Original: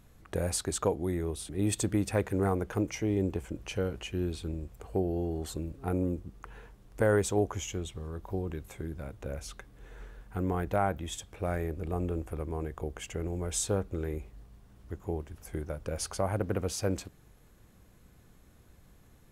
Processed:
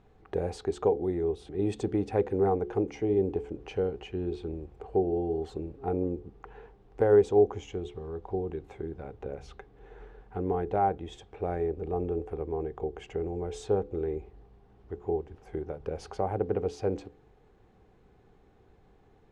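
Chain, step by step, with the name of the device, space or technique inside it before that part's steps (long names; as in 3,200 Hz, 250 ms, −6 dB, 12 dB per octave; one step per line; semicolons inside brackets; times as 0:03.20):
inside a cardboard box (low-pass filter 3,500 Hz 12 dB per octave; hollow resonant body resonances 420/770 Hz, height 13 dB, ringing for 30 ms)
dynamic equaliser 1,500 Hz, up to −4 dB, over −40 dBFS, Q 0.71
hum removal 71.88 Hz, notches 7
level −3.5 dB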